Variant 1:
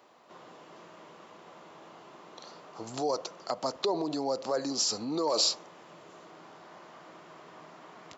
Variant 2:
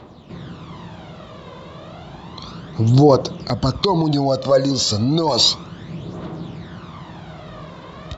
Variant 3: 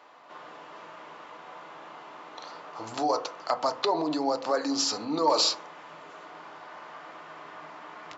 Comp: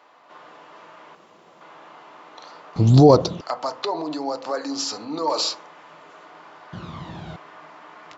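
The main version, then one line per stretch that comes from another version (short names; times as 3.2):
3
1.15–1.61 from 1
2.76–3.41 from 2
6.73–7.36 from 2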